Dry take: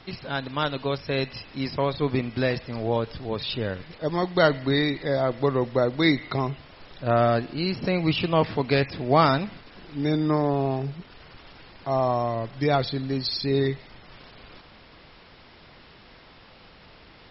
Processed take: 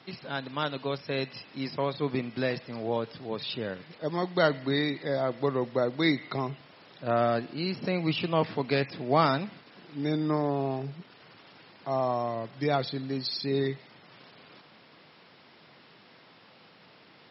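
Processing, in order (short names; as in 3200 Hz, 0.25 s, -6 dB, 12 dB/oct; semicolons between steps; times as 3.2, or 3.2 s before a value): HPF 130 Hz 24 dB/oct; gain -4.5 dB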